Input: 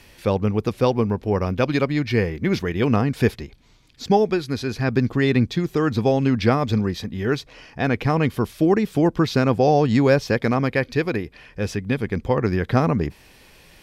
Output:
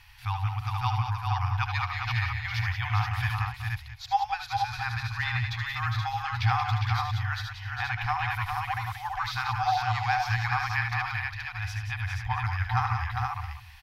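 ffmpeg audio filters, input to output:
ffmpeg -i in.wav -filter_complex "[0:a]asplit=2[link_01][link_02];[link_02]aecho=0:1:72|76|179|405|475|667:0.15|0.422|0.422|0.531|0.596|0.141[link_03];[link_01][link_03]amix=inputs=2:normalize=0,afftfilt=real='re*(1-between(b*sr/4096,120,730))':imag='im*(1-between(b*sr/4096,120,730))':win_size=4096:overlap=0.75,equalizer=frequency=8200:width_type=o:width=1:gain=-10,volume=-3.5dB" out.wav

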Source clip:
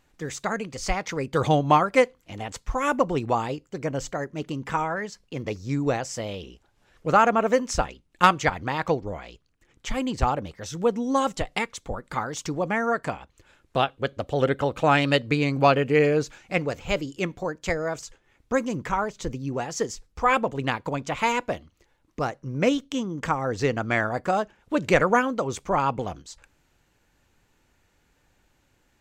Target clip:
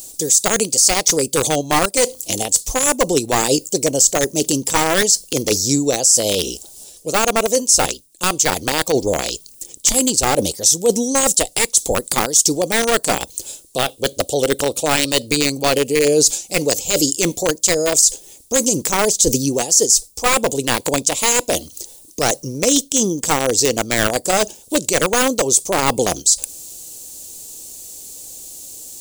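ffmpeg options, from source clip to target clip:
ffmpeg -i in.wav -filter_complex "[0:a]bass=frequency=250:gain=-13,treble=frequency=4000:gain=15,areverse,acompressor=threshold=-34dB:ratio=5,areverse,crystalizer=i=1:c=0,acrossover=split=700|3400[link_01][link_02][link_03];[link_02]acrusher=bits=3:dc=4:mix=0:aa=0.000001[link_04];[link_01][link_04][link_03]amix=inputs=3:normalize=0,aexciter=amount=1.3:drive=4.8:freq=8400,alimiter=level_in=23.5dB:limit=-1dB:release=50:level=0:latency=1,volume=-1dB" out.wav

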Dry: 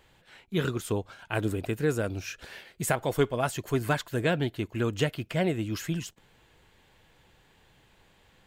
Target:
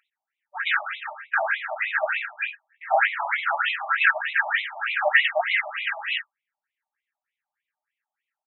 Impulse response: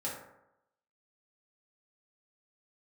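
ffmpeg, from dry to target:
-filter_complex "[0:a]aeval=exprs='val(0)+0.5*0.02*sgn(val(0))':channel_layout=same,agate=range=-59dB:threshold=-32dB:ratio=16:detection=peak,equalizer=frequency=250:width_type=o:width=1:gain=-8,equalizer=frequency=1000:width_type=o:width=1:gain=-7,equalizer=frequency=2000:width_type=o:width=1:gain=8,equalizer=frequency=4000:width_type=o:width=1:gain=-10,acrossover=split=1500[link_01][link_02];[link_02]adelay=110[link_03];[link_01][link_03]amix=inputs=2:normalize=0,aeval=exprs='0.211*sin(PI/2*2.24*val(0)/0.211)':channel_layout=same,aeval=exprs='val(0)+0.00891*sin(2*PI*5300*n/s)':channel_layout=same[link_04];[1:a]atrim=start_sample=2205,atrim=end_sample=4410[link_05];[link_04][link_05]afir=irnorm=-1:irlink=0,alimiter=level_in=10dB:limit=-1dB:release=50:level=0:latency=1,afftfilt=real='re*between(b*sr/1024,820*pow(2900/820,0.5+0.5*sin(2*PI*3.3*pts/sr))/1.41,820*pow(2900/820,0.5+0.5*sin(2*PI*3.3*pts/sr))*1.41)':imag='im*between(b*sr/1024,820*pow(2900/820,0.5+0.5*sin(2*PI*3.3*pts/sr))/1.41,820*pow(2900/820,0.5+0.5*sin(2*PI*3.3*pts/sr))*1.41)':win_size=1024:overlap=0.75,volume=-1.5dB"

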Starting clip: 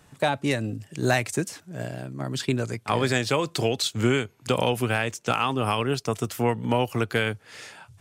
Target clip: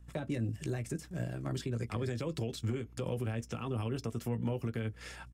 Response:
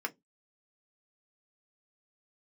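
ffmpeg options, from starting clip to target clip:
-filter_complex "[0:a]agate=range=-18dB:threshold=-47dB:ratio=16:detection=peak,asplit=2[link_01][link_02];[1:a]atrim=start_sample=2205,highshelf=frequency=3700:gain=8[link_03];[link_02][link_03]afir=irnorm=-1:irlink=0,volume=-8dB[link_04];[link_01][link_04]amix=inputs=2:normalize=0,aeval=exprs='val(0)+0.00178*(sin(2*PI*60*n/s)+sin(2*PI*2*60*n/s)/2+sin(2*PI*3*60*n/s)/3+sin(2*PI*4*60*n/s)/4+sin(2*PI*5*60*n/s)/5)':channel_layout=same,acrossover=split=390[link_05][link_06];[link_06]acompressor=threshold=-44dB:ratio=2.5[link_07];[link_05][link_07]amix=inputs=2:normalize=0,asoftclip=type=hard:threshold=-14.5dB,lowshelf=frequency=79:gain=7,asplit=2[link_08][link_09];[link_09]adelay=18,volume=-8dB[link_10];[link_08][link_10]amix=inputs=2:normalize=0,atempo=1.5,alimiter=limit=-22.5dB:level=0:latency=1:release=227,volume=-3dB"

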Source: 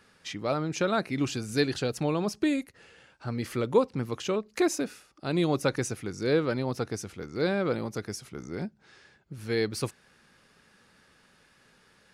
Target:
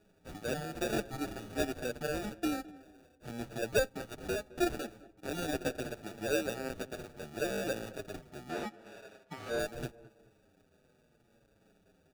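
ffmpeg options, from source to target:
ffmpeg -i in.wav -filter_complex "[0:a]acrossover=split=270[link_01][link_02];[link_01]acompressor=threshold=-42dB:ratio=6[link_03];[link_03][link_02]amix=inputs=2:normalize=0,acrusher=samples=42:mix=1:aa=0.000001,asettb=1/sr,asplit=3[link_04][link_05][link_06];[link_04]atrim=end=8.494[link_07];[link_05]atrim=start=8.49:end=9.59,asetpts=PTS-STARTPTS,afade=type=in:duration=0.004:curve=qsin,afade=type=out:start_time=1.096:duration=0.004:curve=qsin,asplit=2[link_08][link_09];[link_09]highpass=frequency=720:poles=1,volume=22dB,asoftclip=type=tanh:threshold=-19dB[link_10];[link_08][link_10]amix=inputs=2:normalize=0,lowpass=frequency=3900:poles=1,volume=-6dB[link_11];[link_06]atrim=start=9.586[link_12];[link_07][link_11]acrossfade=duration=0.004:curve1=hsin:curve2=qsin[link_13];[link_13][link_12]acrossfade=duration=0.004:curve1=qsin:curve2=hsin,asplit=2[link_14][link_15];[link_15]adelay=213,lowpass=frequency=1600:poles=1,volume=-18.5dB,asplit=2[link_16][link_17];[link_17]adelay=213,lowpass=frequency=1600:poles=1,volume=0.39,asplit=2[link_18][link_19];[link_19]adelay=213,lowpass=frequency=1600:poles=1,volume=0.39[link_20];[link_14][link_16][link_18][link_20]amix=inputs=4:normalize=0,asplit=2[link_21][link_22];[link_22]adelay=7.1,afreqshift=-0.77[link_23];[link_21][link_23]amix=inputs=2:normalize=1,volume=-3dB" out.wav

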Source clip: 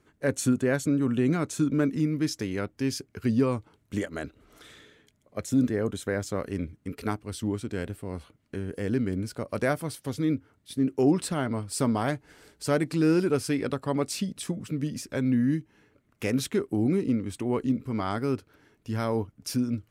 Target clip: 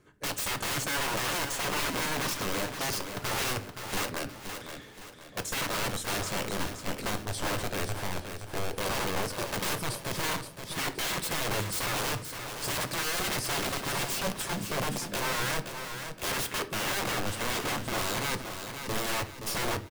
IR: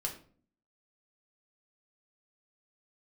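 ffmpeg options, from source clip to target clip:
-filter_complex "[0:a]aeval=exprs='(mod(26.6*val(0)+1,2)-1)/26.6':channel_layout=same,aecho=1:1:522|1044|1566|2088|2610:0.398|0.159|0.0637|0.0255|0.0102,asplit=2[link_01][link_02];[1:a]atrim=start_sample=2205[link_03];[link_02][link_03]afir=irnorm=-1:irlink=0,volume=-3.5dB[link_04];[link_01][link_04]amix=inputs=2:normalize=0,volume=-2dB"

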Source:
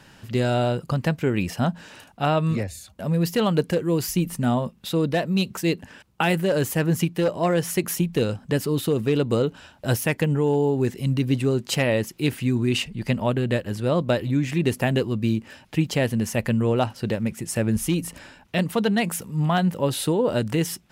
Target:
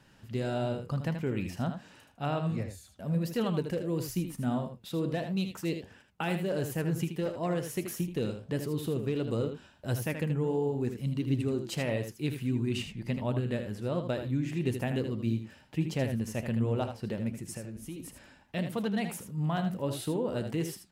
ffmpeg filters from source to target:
ffmpeg -i in.wav -filter_complex "[0:a]lowshelf=frequency=490:gain=4,asettb=1/sr,asplit=3[link_01][link_02][link_03];[link_01]atrim=end=17.534[link_04];[link_02]atrim=start=17.53:end=18,asetpts=PTS-STARTPTS,afade=type=in:duration=0.004:curve=qsin,afade=type=out:start_time=0.466:duration=0.004:curve=qsin,acompressor=threshold=-26dB:ratio=6[link_05];[link_03]atrim=start=17.996[link_06];[link_04][link_05]acrossfade=duration=0.004:curve1=hsin:curve2=qsin[link_07];[link_07][link_06]acrossfade=duration=0.004:curve1=qsin:curve2=hsin,flanger=delay=7.1:depth=8.7:regen=81:speed=1.5:shape=triangular,aecho=1:1:79:0.398,volume=-8dB" out.wav

